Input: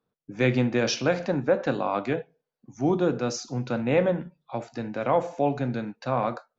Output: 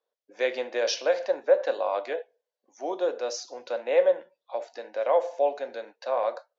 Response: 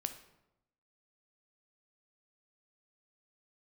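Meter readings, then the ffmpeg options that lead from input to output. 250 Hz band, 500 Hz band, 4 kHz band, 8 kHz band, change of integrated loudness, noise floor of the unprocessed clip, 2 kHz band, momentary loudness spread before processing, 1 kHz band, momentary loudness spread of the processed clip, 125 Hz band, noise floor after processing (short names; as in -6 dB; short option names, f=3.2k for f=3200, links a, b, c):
-17.0 dB, +1.5 dB, -1.0 dB, n/a, -1.5 dB, -85 dBFS, -3.5 dB, 9 LU, -2.5 dB, 13 LU, under -40 dB, under -85 dBFS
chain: -af "highpass=f=490:w=0.5412,highpass=f=490:w=1.3066,equalizer=f=560:t=q:w=4:g=6,equalizer=f=800:t=q:w=4:g=-3,equalizer=f=1.3k:t=q:w=4:g=-9,equalizer=f=2.4k:t=q:w=4:g=-5,lowpass=f=6.5k:w=0.5412,lowpass=f=6.5k:w=1.3066"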